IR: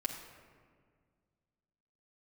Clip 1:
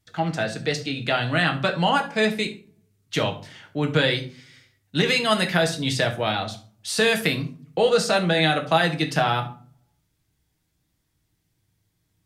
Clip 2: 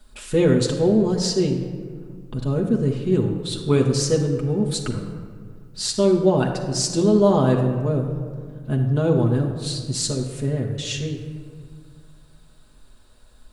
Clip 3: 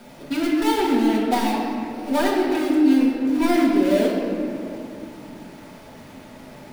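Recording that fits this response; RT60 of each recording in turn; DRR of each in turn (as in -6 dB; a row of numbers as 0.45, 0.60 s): 2; 0.45, 1.9, 2.7 s; 3.5, -0.5, -6.5 dB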